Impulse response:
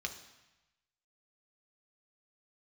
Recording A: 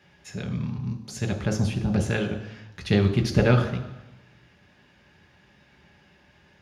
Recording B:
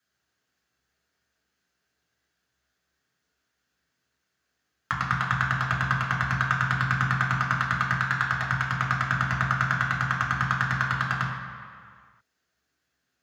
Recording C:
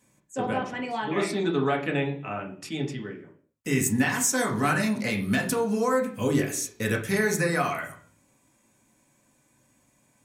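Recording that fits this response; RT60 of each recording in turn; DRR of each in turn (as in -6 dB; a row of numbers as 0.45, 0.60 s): A; 1.0, 2.0, 0.50 s; 3.5, -4.0, 0.0 dB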